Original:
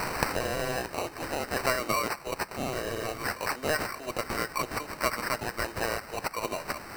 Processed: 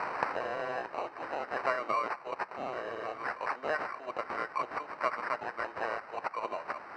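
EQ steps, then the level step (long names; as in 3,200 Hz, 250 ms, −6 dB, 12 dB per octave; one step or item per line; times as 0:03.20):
resonant band-pass 990 Hz, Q 0.95
high-frequency loss of the air 87 metres
0.0 dB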